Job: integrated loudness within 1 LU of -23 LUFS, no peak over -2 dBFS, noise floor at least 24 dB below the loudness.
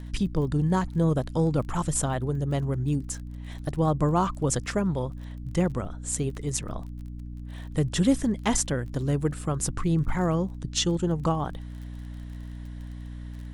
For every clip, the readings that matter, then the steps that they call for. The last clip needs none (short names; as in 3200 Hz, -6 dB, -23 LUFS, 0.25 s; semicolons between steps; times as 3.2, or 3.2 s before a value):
ticks 28/s; hum 60 Hz; harmonics up to 300 Hz; hum level -36 dBFS; loudness -27.0 LUFS; peak -9.5 dBFS; loudness target -23.0 LUFS
-> de-click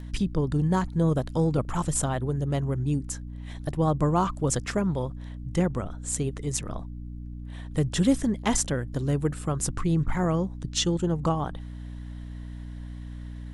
ticks 0.074/s; hum 60 Hz; harmonics up to 300 Hz; hum level -36 dBFS
-> notches 60/120/180/240/300 Hz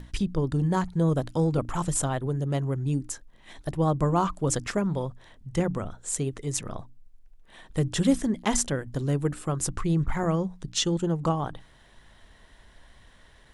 hum none; loudness -27.5 LUFS; peak -9.5 dBFS; loudness target -23.0 LUFS
-> gain +4.5 dB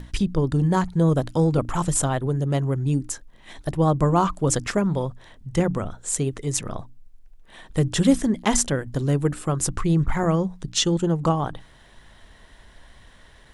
loudness -23.0 LUFS; peak -5.0 dBFS; noise floor -51 dBFS